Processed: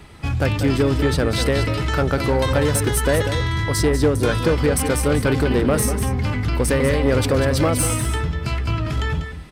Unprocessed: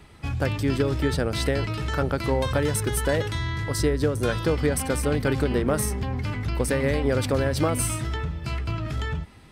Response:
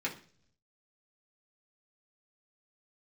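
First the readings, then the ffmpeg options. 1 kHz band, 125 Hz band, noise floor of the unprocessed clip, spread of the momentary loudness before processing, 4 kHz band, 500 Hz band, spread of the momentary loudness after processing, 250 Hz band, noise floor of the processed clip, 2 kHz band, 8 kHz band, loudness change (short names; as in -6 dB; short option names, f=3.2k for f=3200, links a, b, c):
+5.5 dB, +5.5 dB, -41 dBFS, 6 LU, +6.0 dB, +5.5 dB, 5 LU, +5.5 dB, -31 dBFS, +5.5 dB, +6.0 dB, +5.5 dB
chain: -filter_complex "[0:a]asoftclip=type=tanh:threshold=-16.5dB,asplit=2[a][b];[b]aecho=0:1:193|197:0.266|0.224[c];[a][c]amix=inputs=2:normalize=0,volume=6.5dB"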